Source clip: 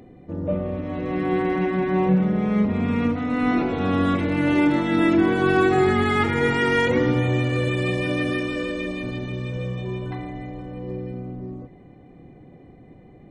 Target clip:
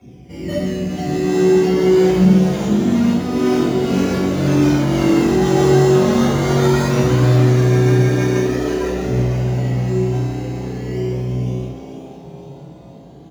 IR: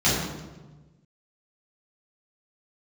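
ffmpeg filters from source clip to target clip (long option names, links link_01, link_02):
-filter_complex "[0:a]acrusher=samples=15:mix=1:aa=0.000001:lfo=1:lforange=9:lforate=0.22,asplit=2[link_01][link_02];[link_02]aeval=exprs='(mod(5.01*val(0)+1,2)-1)/5.01':channel_layout=same,volume=-8dB[link_03];[link_01][link_03]amix=inputs=2:normalize=0,flanger=delay=0.1:depth=7.3:regen=54:speed=0.44:shape=triangular,asplit=7[link_04][link_05][link_06][link_07][link_08][link_09][link_10];[link_05]adelay=485,afreqshift=140,volume=-7.5dB[link_11];[link_06]adelay=970,afreqshift=280,volume=-13.2dB[link_12];[link_07]adelay=1455,afreqshift=420,volume=-18.9dB[link_13];[link_08]adelay=1940,afreqshift=560,volume=-24.5dB[link_14];[link_09]adelay=2425,afreqshift=700,volume=-30.2dB[link_15];[link_10]adelay=2910,afreqshift=840,volume=-35.9dB[link_16];[link_04][link_11][link_12][link_13][link_14][link_15][link_16]amix=inputs=7:normalize=0[link_17];[1:a]atrim=start_sample=2205,afade=type=out:start_time=0.24:duration=0.01,atrim=end_sample=11025[link_18];[link_17][link_18]afir=irnorm=-1:irlink=0,volume=-15.5dB"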